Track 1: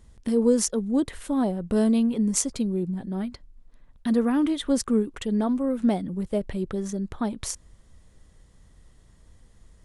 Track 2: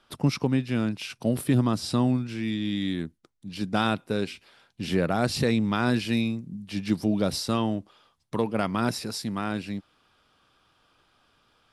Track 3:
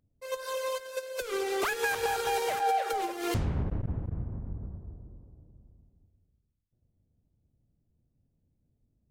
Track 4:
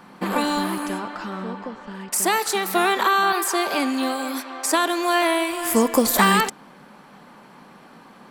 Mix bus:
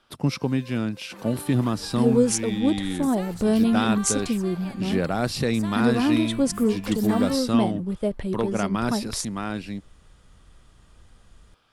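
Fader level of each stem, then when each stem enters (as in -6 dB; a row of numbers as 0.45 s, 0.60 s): +1.0 dB, 0.0 dB, -16.5 dB, -19.5 dB; 1.70 s, 0.00 s, 0.00 s, 0.90 s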